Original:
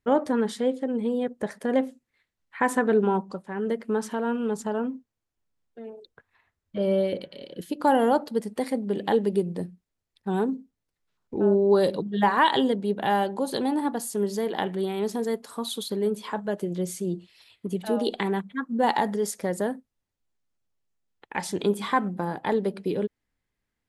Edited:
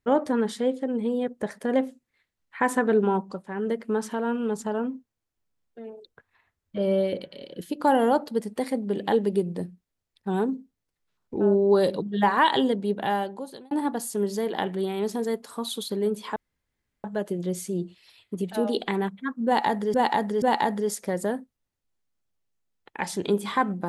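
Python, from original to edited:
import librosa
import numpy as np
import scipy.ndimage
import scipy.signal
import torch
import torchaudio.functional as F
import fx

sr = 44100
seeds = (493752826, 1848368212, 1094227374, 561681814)

y = fx.edit(x, sr, fx.fade_out_span(start_s=12.95, length_s=0.76),
    fx.insert_room_tone(at_s=16.36, length_s=0.68),
    fx.repeat(start_s=18.78, length_s=0.48, count=3), tone=tone)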